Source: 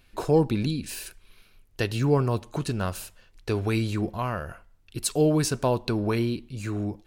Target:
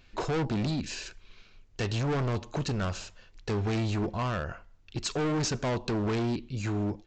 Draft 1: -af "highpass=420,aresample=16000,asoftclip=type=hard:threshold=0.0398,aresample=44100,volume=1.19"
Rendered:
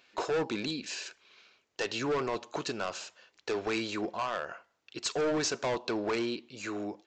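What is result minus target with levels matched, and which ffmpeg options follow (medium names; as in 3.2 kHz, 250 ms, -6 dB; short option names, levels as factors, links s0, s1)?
500 Hz band +3.0 dB
-af "aresample=16000,asoftclip=type=hard:threshold=0.0398,aresample=44100,volume=1.19"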